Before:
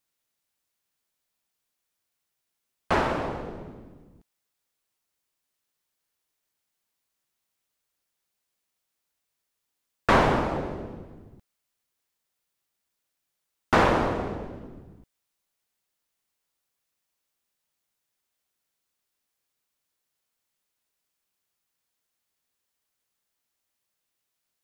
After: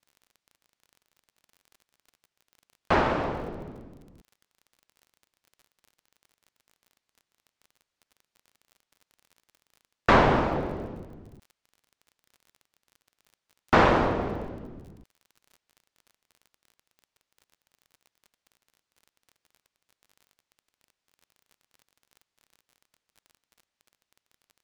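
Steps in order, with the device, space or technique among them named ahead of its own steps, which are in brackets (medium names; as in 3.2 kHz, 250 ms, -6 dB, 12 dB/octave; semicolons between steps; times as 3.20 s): lo-fi chain (low-pass 5.6 kHz 12 dB/octave; wow and flutter; crackle 34 per s -44 dBFS); trim +1 dB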